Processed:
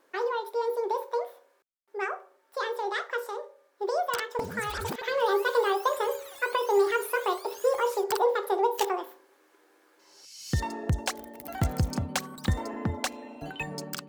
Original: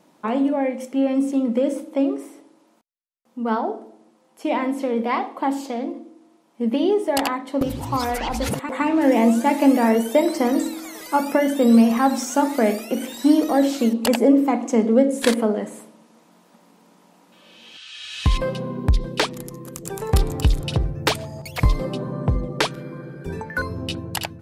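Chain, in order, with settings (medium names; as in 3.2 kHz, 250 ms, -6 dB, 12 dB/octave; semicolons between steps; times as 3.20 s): speed mistake 45 rpm record played at 78 rpm; trim -8.5 dB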